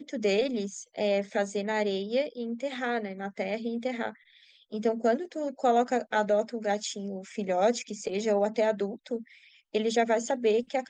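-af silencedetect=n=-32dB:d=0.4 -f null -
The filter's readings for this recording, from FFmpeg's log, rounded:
silence_start: 4.09
silence_end: 4.73 | silence_duration: 0.63
silence_start: 9.18
silence_end: 9.75 | silence_duration: 0.57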